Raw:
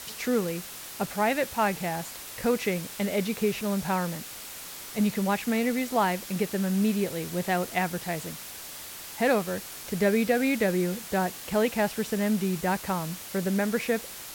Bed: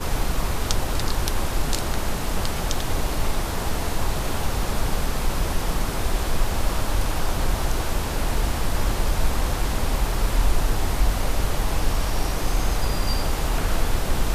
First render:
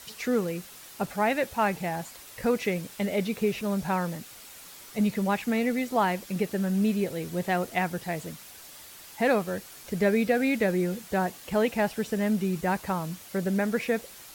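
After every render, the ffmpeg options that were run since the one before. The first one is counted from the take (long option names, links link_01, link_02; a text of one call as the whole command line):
ffmpeg -i in.wav -af "afftdn=noise_reduction=7:noise_floor=-41" out.wav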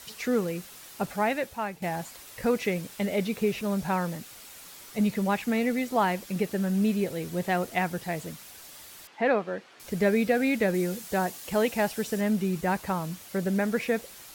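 ffmpeg -i in.wav -filter_complex "[0:a]asettb=1/sr,asplit=3[link_01][link_02][link_03];[link_01]atrim=end=9.074[link_04];[link_02]atrim=start=9.07:end=9.8,asetpts=PTS-STARTPTS,afade=type=in:duration=0.004:curve=qsin,afade=type=out:start_time=0.726:duration=0.004:curve=qsin,highpass=240,lowpass=2900[link_05];[link_03]atrim=start=9.796[link_06];[link_04][link_05]acrossfade=duration=0.004:curve1=hsin:curve2=qsin[link_07];[link_07][link_06]acrossfade=duration=0.004:curve1=qsin:curve2=hsin,asettb=1/sr,asplit=3[link_08][link_09][link_10];[link_08]atrim=end=10.744[link_11];[link_09]atrim=start=10.74:end=12.21,asetpts=PTS-STARTPTS,afade=type=in:duration=0.004:curve=qsin,afade=type=out:start_time=1.466:duration=0.004:curve=qsin,bass=frequency=250:gain=-2,treble=frequency=4000:gain=5[link_12];[link_10]atrim=start=12.206[link_13];[link_11][link_12]acrossfade=duration=0.004:curve1=hsin:curve2=qsin[link_14];[link_14][link_13]acrossfade=duration=0.004:curve1=qsin:curve2=hsin,asplit=2[link_15][link_16];[link_15]atrim=end=1.82,asetpts=PTS-STARTPTS,afade=type=out:start_time=1.16:duration=0.66:silence=0.237137[link_17];[link_16]atrim=start=1.82,asetpts=PTS-STARTPTS,afade=type=in:duration=0.004:curve=hsin:silence=0.237137[link_18];[link_17][link_18]concat=n=2:v=0:a=1" out.wav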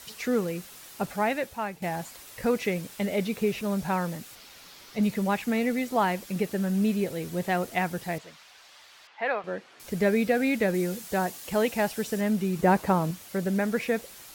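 ffmpeg -i in.wav -filter_complex "[0:a]asettb=1/sr,asplit=3[link_01][link_02][link_03];[link_01]atrim=end=4.354[link_04];[link_02]atrim=start=4.35:end=5.03,asetpts=PTS-STARTPTS,afade=type=in:duration=0.004:curve=qsin,afade=type=out:start_time=0.676:duration=0.004:curve=qsin,highshelf=frequency=6400:width_type=q:width=1.5:gain=-6.5[link_05];[link_03]atrim=start=5.026[link_06];[link_04][link_05]acrossfade=duration=0.004:curve1=hsin:curve2=qsin[link_07];[link_07][link_06]acrossfade=duration=0.004:curve1=qsin:curve2=hsin,asettb=1/sr,asplit=3[link_08][link_09][link_10];[link_08]atrim=end=8.184[link_11];[link_09]atrim=start=8.18:end=9.44,asetpts=PTS-STARTPTS,afade=type=in:duration=0.004:curve=qsin,afade=type=out:start_time=1.256:duration=0.004:curve=qsin,acrossover=split=580 5600:gain=0.158 1 0.1[link_12][link_13][link_14];[link_12][link_13][link_14]amix=inputs=3:normalize=0[link_15];[link_10]atrim=start=9.436[link_16];[link_11][link_15]acrossfade=duration=0.004:curve1=hsin:curve2=qsin[link_17];[link_17][link_16]acrossfade=duration=0.004:curve1=qsin:curve2=hsin,asettb=1/sr,asplit=3[link_18][link_19][link_20];[link_18]atrim=end=12.594[link_21];[link_19]atrim=start=12.59:end=13.11,asetpts=PTS-STARTPTS,afade=type=in:duration=0.004:curve=qsin,afade=type=out:start_time=0.516:duration=0.004:curve=qsin,equalizer=frequency=370:width=0.36:gain=8[link_22];[link_20]atrim=start=13.106[link_23];[link_21][link_22]acrossfade=duration=0.004:curve1=hsin:curve2=qsin[link_24];[link_24][link_23]acrossfade=duration=0.004:curve1=qsin:curve2=hsin" out.wav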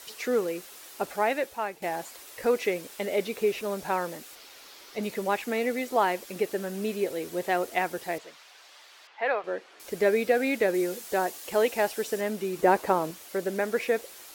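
ffmpeg -i in.wav -af "lowshelf=frequency=250:width_type=q:width=1.5:gain=-10.5" out.wav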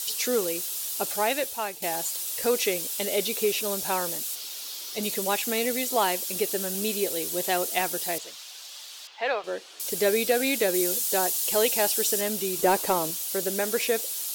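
ffmpeg -i in.wav -af "aexciter=amount=3.3:drive=7.3:freq=2900,asoftclip=type=tanh:threshold=-9dB" out.wav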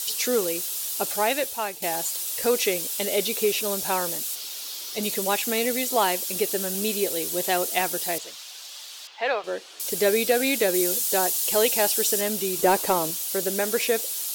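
ffmpeg -i in.wav -af "volume=2dB" out.wav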